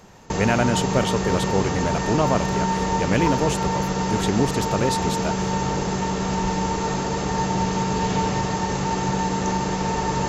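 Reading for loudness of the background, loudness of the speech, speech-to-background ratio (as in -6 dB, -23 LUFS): -24.0 LUFS, -25.0 LUFS, -1.0 dB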